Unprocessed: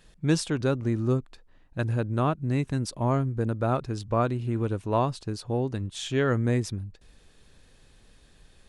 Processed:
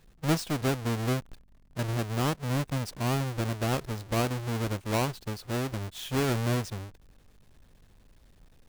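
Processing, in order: square wave that keeps the level; hum 50 Hz, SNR 33 dB; trim -7.5 dB

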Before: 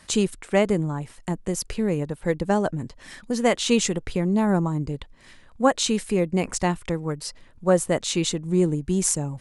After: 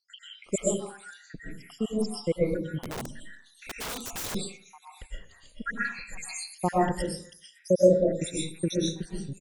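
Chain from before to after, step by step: random holes in the spectrogram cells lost 85%; bands offset in time lows, highs 440 ms, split 3.4 kHz; reverberation RT60 0.50 s, pre-delay 85 ms, DRR -6 dB; 2.80–4.35 s: integer overflow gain 27 dB; trim -3 dB

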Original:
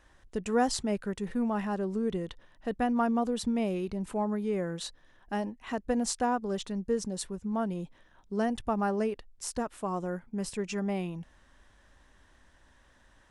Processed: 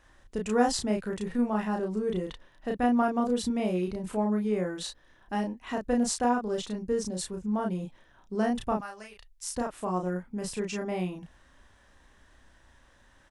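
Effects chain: 8.77–9.52 s: amplifier tone stack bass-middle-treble 10-0-10; doubling 33 ms -2.5 dB

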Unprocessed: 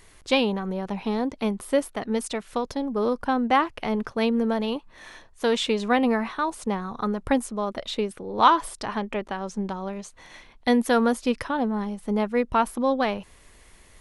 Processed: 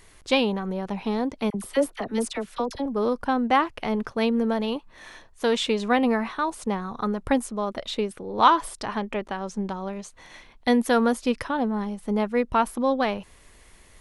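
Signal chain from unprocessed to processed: 1.50–2.86 s: phase dispersion lows, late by 44 ms, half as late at 1.1 kHz

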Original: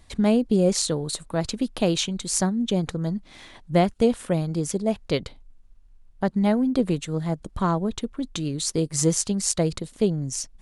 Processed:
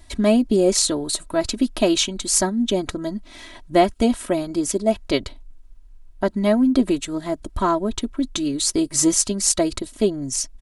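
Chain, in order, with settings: treble shelf 8.7 kHz +4 dB; comb 3.1 ms, depth 81%; trim +2.5 dB

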